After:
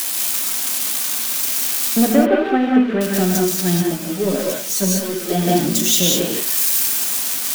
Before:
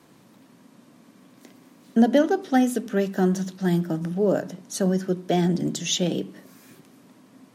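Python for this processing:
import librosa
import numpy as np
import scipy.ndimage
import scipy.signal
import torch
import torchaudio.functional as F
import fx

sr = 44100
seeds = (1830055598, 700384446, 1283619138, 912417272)

y = x + 0.5 * 10.0 ** (-14.0 / 20.0) * np.diff(np.sign(x), prepend=np.sign(x[:1]))
y = fx.lowpass(y, sr, hz=2600.0, slope=24, at=(2.05, 3.01))
y = fx.leveller(y, sr, passes=1)
y = fx.rev_gated(y, sr, seeds[0], gate_ms=220, shape='rising', drr_db=-1.0)
y = fx.ensemble(y, sr, at=(3.82, 5.46), fade=0.02)
y = y * 10.0 ** (-1.0 / 20.0)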